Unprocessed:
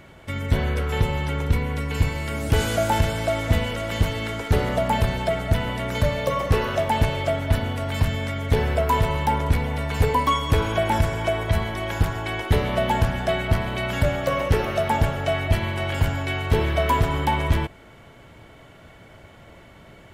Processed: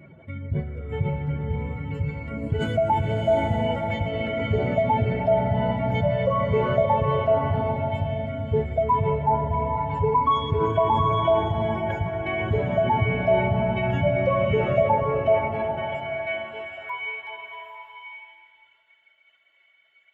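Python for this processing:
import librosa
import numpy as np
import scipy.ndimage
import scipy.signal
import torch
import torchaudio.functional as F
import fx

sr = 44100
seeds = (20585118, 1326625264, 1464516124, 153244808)

y = fx.spec_expand(x, sr, power=2.1)
y = fx.filter_sweep_highpass(y, sr, from_hz=150.0, to_hz=2900.0, start_s=14.77, end_s=17.15, q=1.3)
y = fx.rev_bloom(y, sr, seeds[0], attack_ms=800, drr_db=1.5)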